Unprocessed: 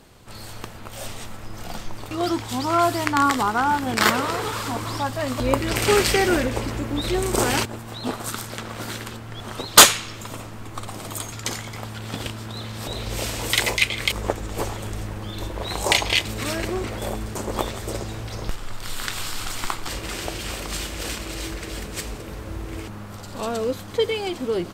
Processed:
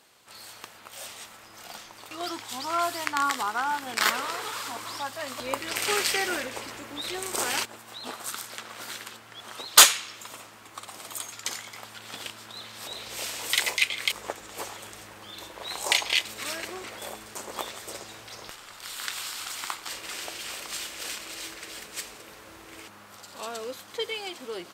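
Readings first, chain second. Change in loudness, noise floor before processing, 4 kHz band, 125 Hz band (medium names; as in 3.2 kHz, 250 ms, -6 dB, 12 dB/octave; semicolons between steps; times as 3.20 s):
-4.5 dB, -37 dBFS, -3.5 dB, -24.0 dB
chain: high-pass 1.2 kHz 6 dB/octave; trim -3 dB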